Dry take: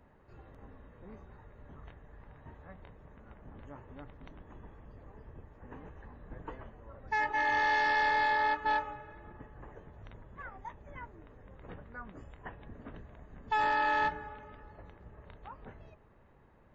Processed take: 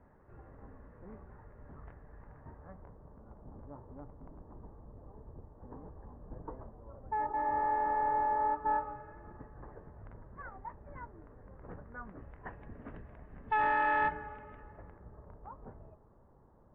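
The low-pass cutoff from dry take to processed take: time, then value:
low-pass 24 dB/octave
2.25 s 1.8 kHz
3.24 s 1.1 kHz
8.47 s 1.1 kHz
9.10 s 1.6 kHz
11.85 s 1.6 kHz
12.80 s 2.5 kHz
14.59 s 2.5 kHz
15.27 s 1.2 kHz

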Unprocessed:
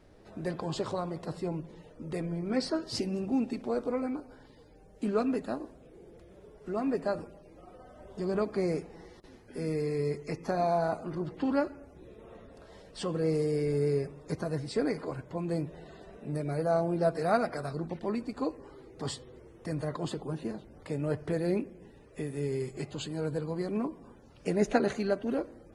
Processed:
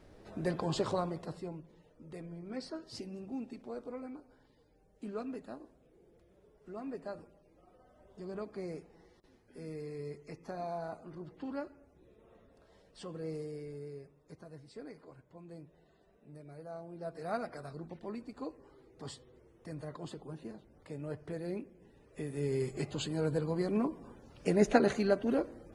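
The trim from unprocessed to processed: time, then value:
0.99 s +0.5 dB
1.64 s -11.5 dB
13.35 s -11.5 dB
13.91 s -18 dB
16.89 s -18 dB
17.34 s -9.5 dB
21.73 s -9.5 dB
22.64 s +0.5 dB

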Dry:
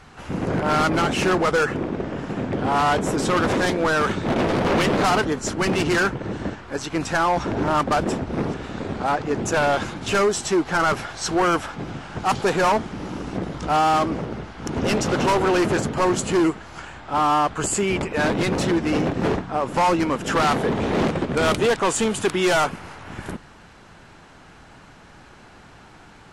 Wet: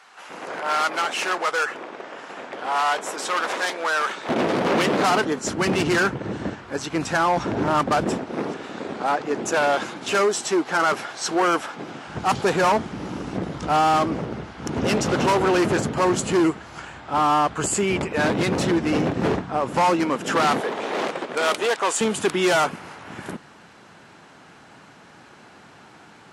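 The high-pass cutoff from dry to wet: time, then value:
730 Hz
from 4.29 s 190 Hz
from 5.47 s 93 Hz
from 8.18 s 260 Hz
from 12.07 s 74 Hz
from 19.90 s 180 Hz
from 20.60 s 490 Hz
from 22.01 s 150 Hz

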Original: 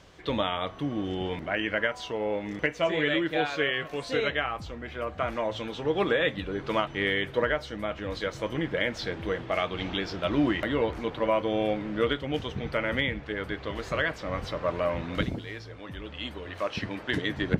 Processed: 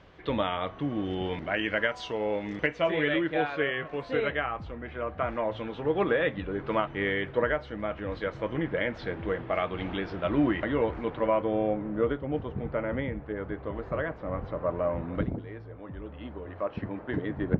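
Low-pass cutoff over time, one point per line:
0.78 s 2.8 kHz
1.86 s 5.9 kHz
2.40 s 5.9 kHz
2.81 s 3.2 kHz
3.52 s 2.1 kHz
11.22 s 2.1 kHz
11.77 s 1.1 kHz

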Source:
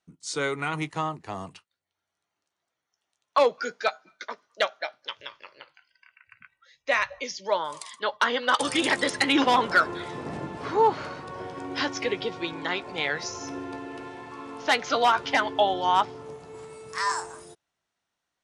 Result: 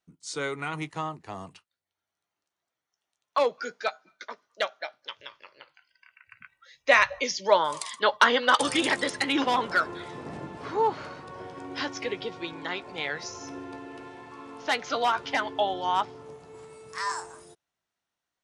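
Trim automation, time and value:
5.51 s -3.5 dB
6.90 s +5 dB
8.15 s +5 dB
9.20 s -4 dB

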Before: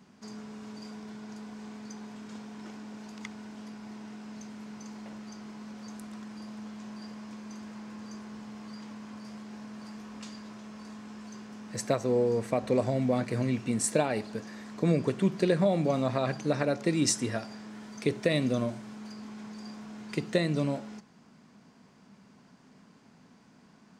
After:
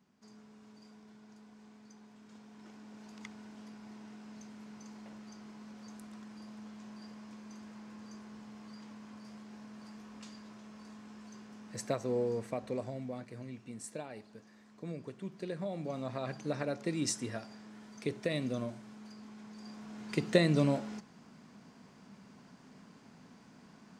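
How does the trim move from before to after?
2.13 s -13.5 dB
3.17 s -6.5 dB
12.29 s -6.5 dB
13.35 s -16.5 dB
15.21 s -16.5 dB
16.46 s -7.5 dB
19.46 s -7.5 dB
20.36 s +1 dB

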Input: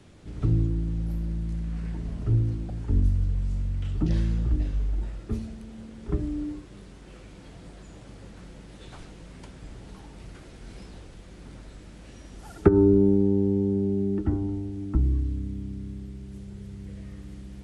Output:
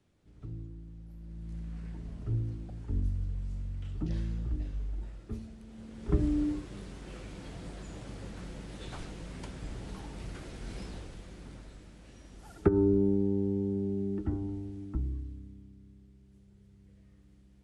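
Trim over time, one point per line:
1.13 s -19 dB
1.57 s -9 dB
5.58 s -9 dB
6.25 s +2 dB
10.89 s +2 dB
11.97 s -7 dB
14.70 s -7 dB
15.75 s -18.5 dB

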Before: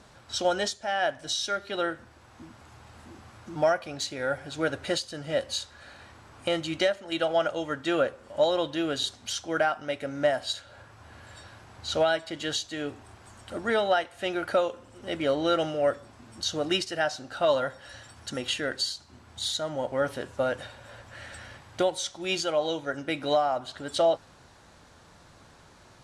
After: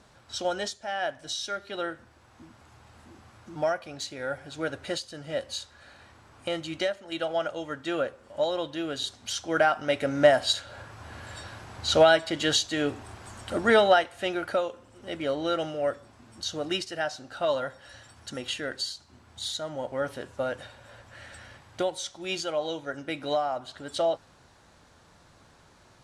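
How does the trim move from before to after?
8.93 s -3.5 dB
9.99 s +6 dB
13.77 s +6 dB
14.63 s -3 dB

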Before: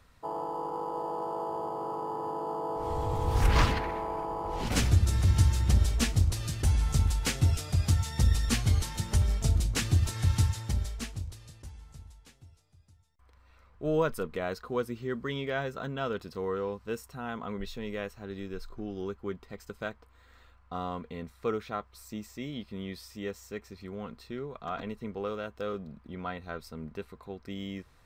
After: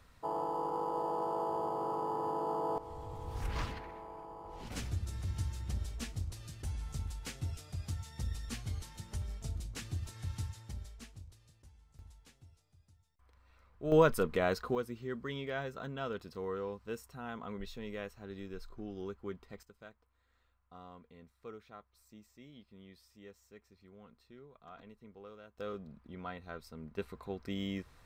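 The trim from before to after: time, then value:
-1 dB
from 2.78 s -14 dB
from 11.99 s -5 dB
from 13.92 s +2.5 dB
from 14.75 s -6 dB
from 19.63 s -17 dB
from 25.58 s -6.5 dB
from 26.98 s +0.5 dB

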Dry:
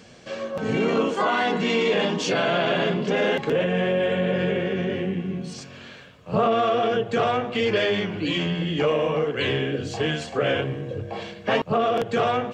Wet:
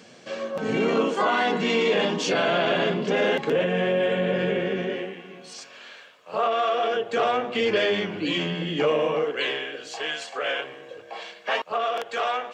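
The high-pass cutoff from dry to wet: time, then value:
4.73 s 180 Hz
5.17 s 600 Hz
6.64 s 600 Hz
7.65 s 200 Hz
9.02 s 200 Hz
9.66 s 730 Hz

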